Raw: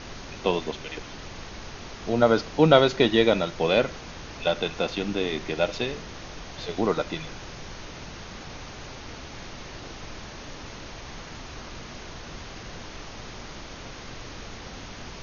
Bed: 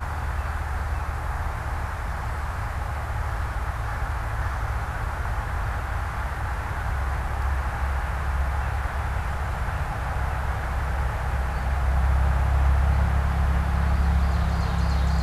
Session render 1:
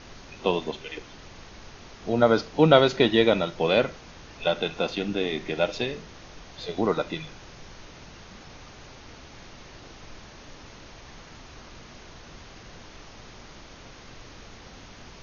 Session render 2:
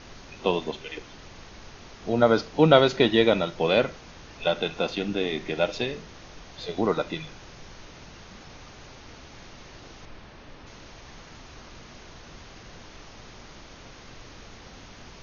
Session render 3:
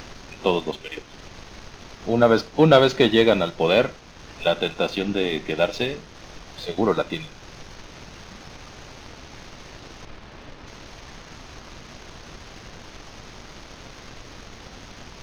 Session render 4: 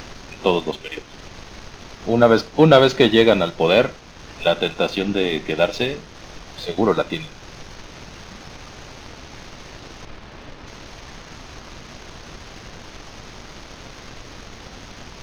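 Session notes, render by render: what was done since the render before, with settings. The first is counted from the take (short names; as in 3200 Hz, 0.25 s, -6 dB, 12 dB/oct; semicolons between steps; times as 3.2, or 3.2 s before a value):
noise print and reduce 6 dB
10.05–10.67 air absorption 140 m
sample leveller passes 1; upward compressor, threshold -33 dBFS
gain +3 dB; limiter -1 dBFS, peak gain reduction 1 dB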